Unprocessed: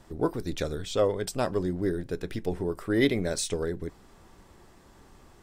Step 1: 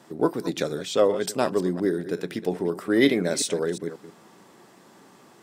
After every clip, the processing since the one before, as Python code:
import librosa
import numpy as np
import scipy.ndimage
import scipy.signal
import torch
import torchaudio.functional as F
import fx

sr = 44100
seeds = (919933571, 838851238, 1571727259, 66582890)

y = fx.reverse_delay(x, sr, ms=180, wet_db=-13.0)
y = scipy.signal.sosfilt(scipy.signal.butter(4, 160.0, 'highpass', fs=sr, output='sos'), y)
y = F.gain(torch.from_numpy(y), 4.5).numpy()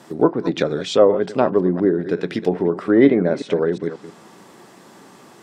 y = fx.env_lowpass_down(x, sr, base_hz=1300.0, full_db=-20.5)
y = F.gain(torch.from_numpy(y), 7.0).numpy()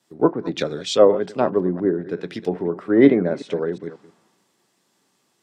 y = fx.band_widen(x, sr, depth_pct=70)
y = F.gain(torch.from_numpy(y), -3.5).numpy()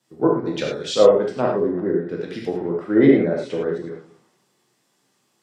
y = fx.rev_gated(x, sr, seeds[0], gate_ms=130, shape='flat', drr_db=-1.5)
y = F.gain(torch.from_numpy(y), -3.5).numpy()